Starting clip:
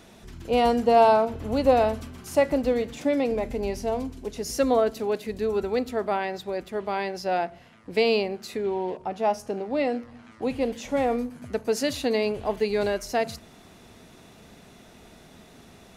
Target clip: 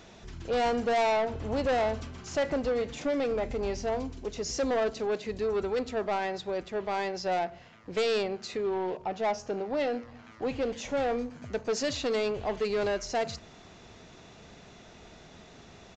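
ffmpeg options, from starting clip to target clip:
ffmpeg -i in.wav -af "equalizer=frequency=240:width=2:gain=-4.5,aresample=16000,asoftclip=type=tanh:threshold=-23.5dB,aresample=44100" out.wav

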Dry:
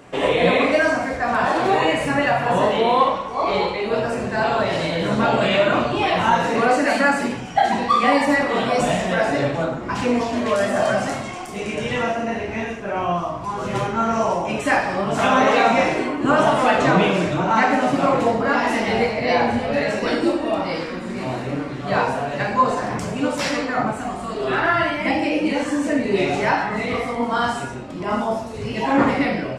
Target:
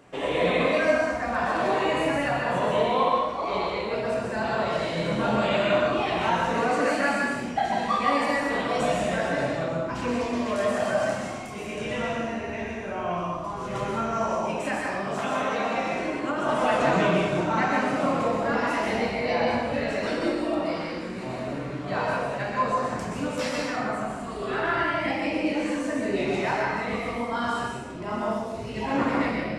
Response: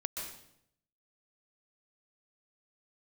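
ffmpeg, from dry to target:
-filter_complex "[0:a]asettb=1/sr,asplit=3[link_01][link_02][link_03];[link_01]atrim=end=14.334[link_04];[link_02]atrim=start=14.33:end=16.49,asetpts=PTS-STARTPTS,afade=type=in:duration=0.004:curve=qsin,afade=type=out:start_time=2.156:duration=0.004:curve=qsin,acrossover=split=130|350[link_05][link_06][link_07];[link_05]acompressor=threshold=-45dB:ratio=4[link_08];[link_06]acompressor=threshold=-27dB:ratio=4[link_09];[link_07]acompressor=threshold=-19dB:ratio=4[link_10];[link_08][link_09][link_10]amix=inputs=3:normalize=0[link_11];[link_03]atrim=start=16.486[link_12];[link_04][link_11]acrossfade=duration=0.004:curve1=hsin:curve2=qsin[link_13];[link_13][link_12]acrossfade=duration=0.004:curve1=qsin:curve2=hsin[link_14];[1:a]atrim=start_sample=2205[link_15];[link_14][link_15]afir=irnorm=-1:irlink=0,volume=-7.5dB"

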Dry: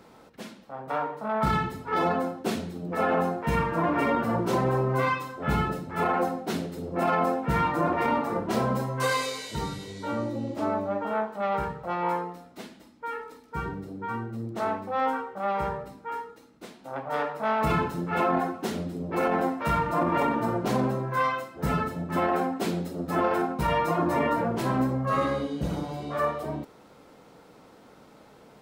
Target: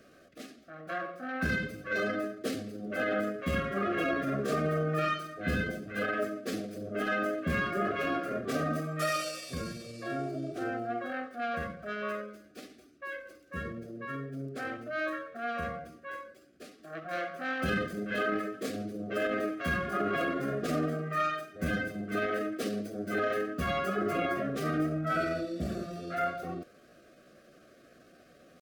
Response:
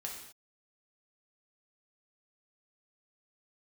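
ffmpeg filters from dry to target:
-af "asetrate=52444,aresample=44100,atempo=0.840896,asuperstop=centerf=920:order=12:qfactor=2.5,volume=-4.5dB"

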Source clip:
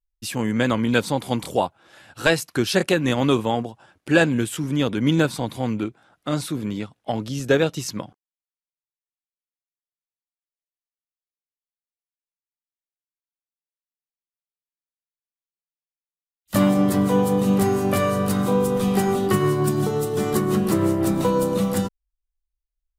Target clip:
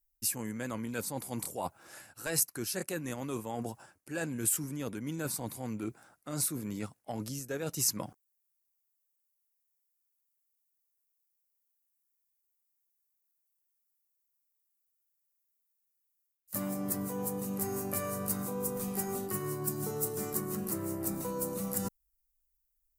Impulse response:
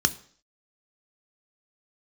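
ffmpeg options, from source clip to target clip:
-af "equalizer=frequency=3400:width=2.2:gain=-12.5,areverse,acompressor=threshold=-32dB:ratio=8,areverse,aemphasis=mode=production:type=75fm,volume=-1.5dB"

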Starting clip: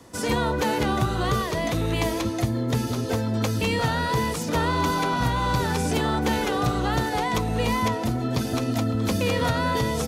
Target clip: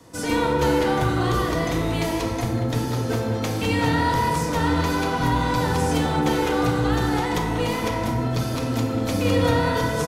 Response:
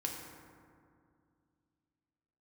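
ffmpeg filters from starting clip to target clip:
-filter_complex "[0:a]acrossover=split=1300[link_01][link_02];[link_01]aeval=exprs='clip(val(0),-1,0.0668)':channel_layout=same[link_03];[link_03][link_02]amix=inputs=2:normalize=0,asplit=2[link_04][link_05];[link_05]adelay=190,highpass=300,lowpass=3400,asoftclip=type=hard:threshold=-19.5dB,volume=-8dB[link_06];[link_04][link_06]amix=inputs=2:normalize=0[link_07];[1:a]atrim=start_sample=2205,afade=type=out:start_time=0.41:duration=0.01,atrim=end_sample=18522[link_08];[link_07][link_08]afir=irnorm=-1:irlink=0"

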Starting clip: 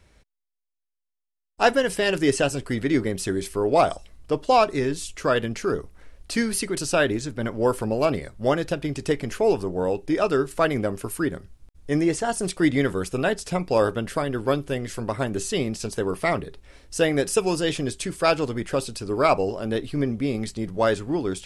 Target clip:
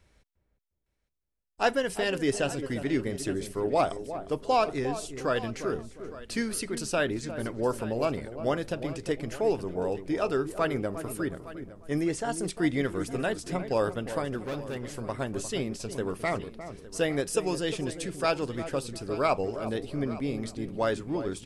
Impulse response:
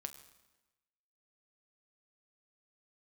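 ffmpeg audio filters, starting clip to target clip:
-filter_complex "[0:a]asplit=2[link_01][link_02];[link_02]aecho=0:1:862:0.141[link_03];[link_01][link_03]amix=inputs=2:normalize=0,asettb=1/sr,asplit=3[link_04][link_05][link_06];[link_04]atrim=end=14.384[link_07];[link_05]atrim=start=14.38:end=14.85,asetpts=PTS-STARTPTS,afade=type=in:duration=0.004:curve=qsin,afade=type=out:start_time=0.466:duration=0.004:curve=qsin,asoftclip=type=hard:threshold=-24.5dB[link_08];[link_06]atrim=start=14.846[link_09];[link_07][link_08]acrossfade=duration=0.004:curve1=hsin:curve2=qsin[link_10];[link_10][link_09]acrossfade=duration=0.004:curve1=qsin:curve2=hsin,asplit=2[link_11][link_12];[link_12]adelay=354,lowpass=frequency=830:poles=1,volume=-9.5dB,asplit=2[link_13][link_14];[link_14]adelay=354,lowpass=frequency=830:poles=1,volume=0.33,asplit=2[link_15][link_16];[link_16]adelay=354,lowpass=frequency=830:poles=1,volume=0.33,asplit=2[link_17][link_18];[link_18]adelay=354,lowpass=frequency=830:poles=1,volume=0.33[link_19];[link_13][link_15][link_17][link_19]amix=inputs=4:normalize=0[link_20];[link_11][link_20]amix=inputs=2:normalize=0,volume=-6.5dB"

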